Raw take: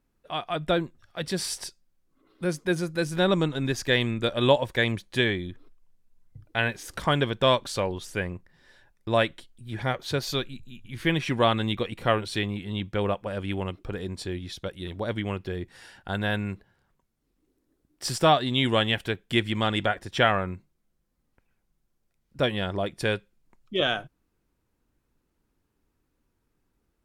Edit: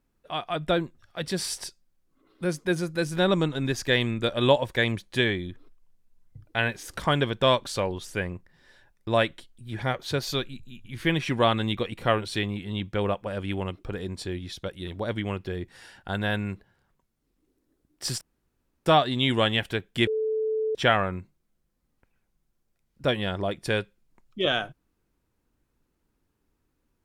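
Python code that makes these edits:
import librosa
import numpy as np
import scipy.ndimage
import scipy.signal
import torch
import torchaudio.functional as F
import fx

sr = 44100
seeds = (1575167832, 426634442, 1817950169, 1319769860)

y = fx.edit(x, sr, fx.insert_room_tone(at_s=18.21, length_s=0.65),
    fx.bleep(start_s=19.42, length_s=0.68, hz=437.0, db=-23.5), tone=tone)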